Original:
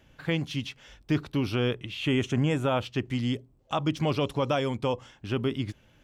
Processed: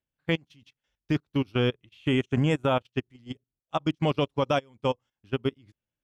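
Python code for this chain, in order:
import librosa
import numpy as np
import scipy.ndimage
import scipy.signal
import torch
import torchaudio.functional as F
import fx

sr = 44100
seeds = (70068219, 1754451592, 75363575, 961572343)

y = fx.level_steps(x, sr, step_db=13)
y = fx.upward_expand(y, sr, threshold_db=-46.0, expansion=2.5)
y = y * 10.0 ** (5.0 / 20.0)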